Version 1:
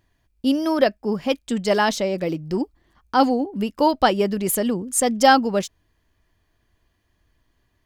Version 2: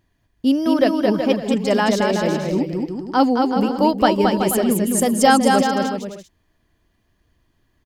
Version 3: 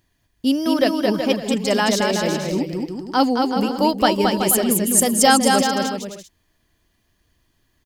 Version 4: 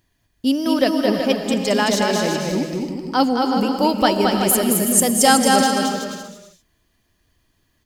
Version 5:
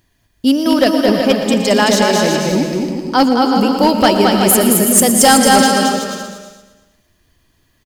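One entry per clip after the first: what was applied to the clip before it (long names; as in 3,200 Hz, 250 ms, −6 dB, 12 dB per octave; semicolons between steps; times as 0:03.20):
parametric band 210 Hz +4.5 dB 1.9 octaves; on a send: bouncing-ball delay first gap 220 ms, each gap 0.7×, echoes 5; on the sum: level −1 dB
high-shelf EQ 2,700 Hz +9.5 dB; level −2 dB
reverb whose tail is shaped and stops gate 360 ms rising, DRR 8 dB
gain into a clipping stage and back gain 10 dB; on a send: repeating echo 117 ms, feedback 57%, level −13 dB; on the sum: level +6 dB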